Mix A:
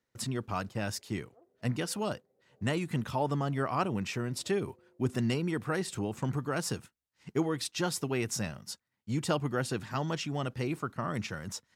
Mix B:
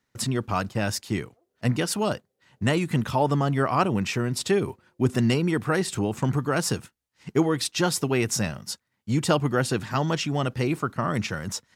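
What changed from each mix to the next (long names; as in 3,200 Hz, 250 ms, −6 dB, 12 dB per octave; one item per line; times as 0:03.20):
speech +8.0 dB
background −6.0 dB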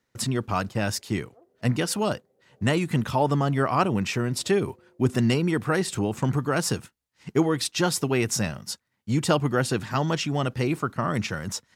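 background +11.5 dB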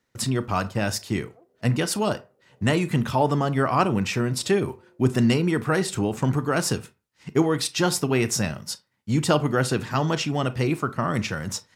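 reverb: on, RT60 0.30 s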